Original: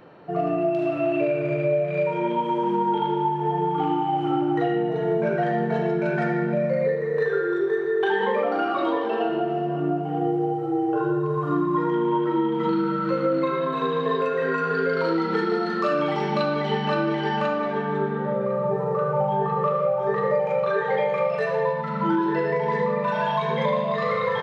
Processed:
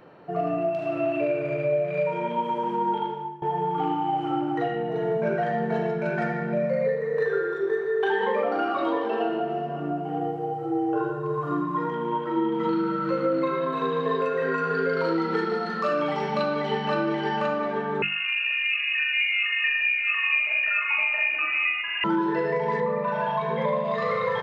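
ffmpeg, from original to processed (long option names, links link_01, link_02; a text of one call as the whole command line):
ffmpeg -i in.wav -filter_complex "[0:a]asettb=1/sr,asplit=3[link_01][link_02][link_03];[link_01]atrim=end=18.024[link_04];[link_02]atrim=start=18.02:end=22.04,asetpts=PTS-STARTPTS,afade=type=in:duration=0.004:curve=qsin,afade=type=out:start_time=4.016:duration=0.004:curve=qsin,lowpass=frequency=2600:width_type=q:width=0.5098,lowpass=frequency=2600:width_type=q:width=0.6013,lowpass=frequency=2600:width_type=q:width=0.9,lowpass=frequency=2600:width_type=q:width=2.563,afreqshift=-3000[link_05];[link_03]atrim=start=22.036[link_06];[link_04][link_05]acrossfade=duration=0.004:curve1=hsin:curve2=qsin[link_07];[link_07][link_06]acrossfade=duration=0.004:curve1=qsin:curve2=hsin,asettb=1/sr,asplit=3[link_08][link_09][link_10];[link_08]atrim=end=22.804[link_11];[link_09]atrim=start=22.8:end=23.85,asetpts=PTS-STARTPTS,afade=type=in:duration=0.004:curve=qsin,afade=type=out:start_time=1.046:duration=0.004:curve=qsin,aemphasis=mode=reproduction:type=75kf[link_12];[link_10]atrim=start=23.846[link_13];[link_11][link_12]acrossfade=duration=0.004:curve1=hsin:curve2=qsin[link_14];[link_14][link_13]acrossfade=duration=0.004:curve1=qsin:curve2=hsin,asplit=2[link_15][link_16];[link_15]atrim=end=3.42,asetpts=PTS-STARTPTS,afade=type=out:start_time=2.91:duration=0.51:silence=0.1[link_17];[link_16]atrim=start=3.42,asetpts=PTS-STARTPTS,afade=type=in:duration=0.004:curve=hsin:silence=0.1[link_18];[link_17][link_18]concat=n=2:v=0:a=1,equalizer=frequency=3600:width=4.3:gain=-2.5,bandreject=frequency=50:width_type=h:width=6,bandreject=frequency=100:width_type=h:width=6,bandreject=frequency=150:width_type=h:width=6,bandreject=frequency=200:width_type=h:width=6,bandreject=frequency=250:width_type=h:width=6,bandreject=frequency=300:width_type=h:width=6,bandreject=frequency=350:width_type=h:width=6,volume=-1.5dB" out.wav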